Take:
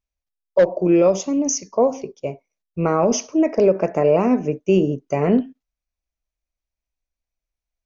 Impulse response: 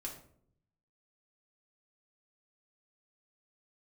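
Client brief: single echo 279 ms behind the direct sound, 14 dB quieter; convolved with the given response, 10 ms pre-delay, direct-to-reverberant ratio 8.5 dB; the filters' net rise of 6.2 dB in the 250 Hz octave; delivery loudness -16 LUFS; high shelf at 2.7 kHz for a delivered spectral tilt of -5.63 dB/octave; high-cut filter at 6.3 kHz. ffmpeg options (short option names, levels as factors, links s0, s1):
-filter_complex "[0:a]lowpass=6300,equalizer=f=250:t=o:g=8,highshelf=f=2700:g=6,aecho=1:1:279:0.2,asplit=2[s0][s1];[1:a]atrim=start_sample=2205,adelay=10[s2];[s1][s2]afir=irnorm=-1:irlink=0,volume=0.473[s3];[s0][s3]amix=inputs=2:normalize=0,volume=0.841"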